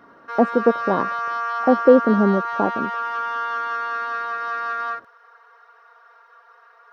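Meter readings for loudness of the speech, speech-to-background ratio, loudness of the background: -19.5 LUFS, 6.0 dB, -25.5 LUFS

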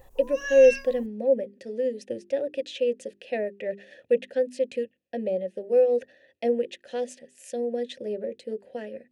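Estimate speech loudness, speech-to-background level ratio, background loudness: -27.0 LUFS, 6.0 dB, -33.0 LUFS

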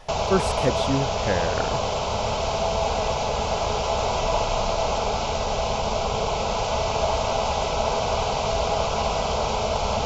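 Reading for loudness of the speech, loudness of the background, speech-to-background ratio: -27.5 LUFS, -24.5 LUFS, -3.0 dB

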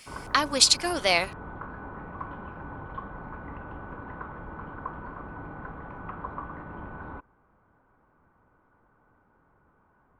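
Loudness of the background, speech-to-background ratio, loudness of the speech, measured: -40.5 LUFS, 18.5 dB, -22.0 LUFS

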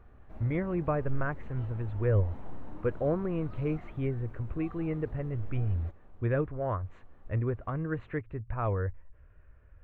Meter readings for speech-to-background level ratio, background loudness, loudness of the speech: 16.5 dB, -49.5 LUFS, -33.0 LUFS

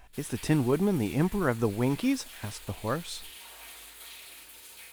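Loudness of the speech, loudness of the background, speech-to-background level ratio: -29.0 LUFS, -45.0 LUFS, 16.0 dB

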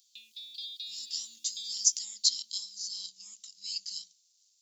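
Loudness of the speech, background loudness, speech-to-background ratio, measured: -32.0 LUFS, -43.0 LUFS, 11.0 dB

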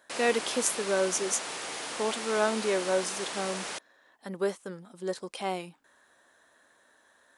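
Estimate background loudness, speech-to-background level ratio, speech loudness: -35.5 LUFS, 4.5 dB, -31.0 LUFS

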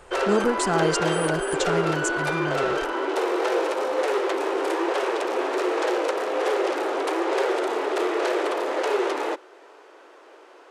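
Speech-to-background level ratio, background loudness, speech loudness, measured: -2.5 dB, -25.0 LUFS, -27.5 LUFS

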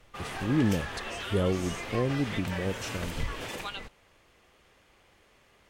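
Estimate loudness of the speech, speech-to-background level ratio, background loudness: -31.0 LUFS, 6.0 dB, -37.0 LUFS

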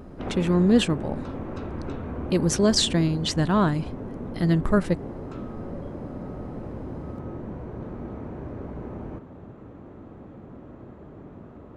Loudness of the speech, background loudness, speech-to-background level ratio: -23.0 LUFS, -36.5 LUFS, 13.5 dB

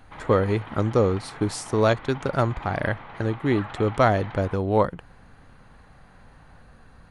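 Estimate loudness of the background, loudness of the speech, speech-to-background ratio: -41.0 LUFS, -24.0 LUFS, 17.0 dB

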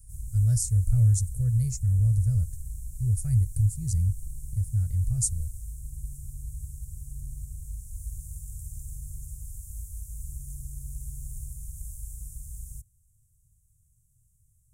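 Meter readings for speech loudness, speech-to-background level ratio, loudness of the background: -26.0 LUFS, 14.5 dB, -40.5 LUFS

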